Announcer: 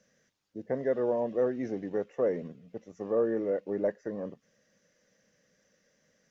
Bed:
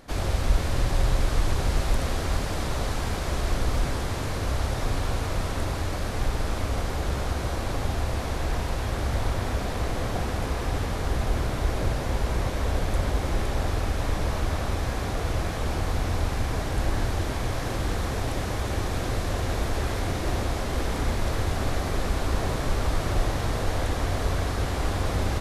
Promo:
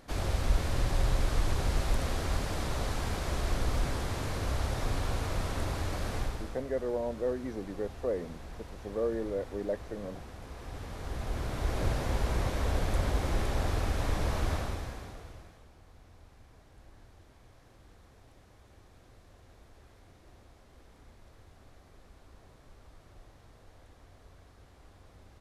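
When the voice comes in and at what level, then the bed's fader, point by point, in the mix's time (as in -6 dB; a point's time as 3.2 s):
5.85 s, -4.0 dB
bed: 6.16 s -5 dB
6.64 s -18 dB
10.4 s -18 dB
11.86 s -4 dB
14.53 s -4 dB
15.71 s -30 dB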